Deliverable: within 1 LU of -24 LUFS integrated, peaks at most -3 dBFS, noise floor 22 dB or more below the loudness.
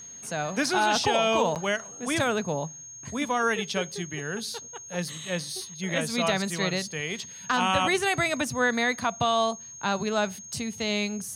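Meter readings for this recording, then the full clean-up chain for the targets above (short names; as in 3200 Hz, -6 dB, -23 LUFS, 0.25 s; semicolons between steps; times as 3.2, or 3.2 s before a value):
dropouts 1; longest dropout 8.3 ms; steady tone 6500 Hz; tone level -41 dBFS; loudness -27.0 LUFS; peak -10.5 dBFS; loudness target -24.0 LUFS
-> interpolate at 1.55, 8.3 ms; notch 6500 Hz, Q 30; gain +3 dB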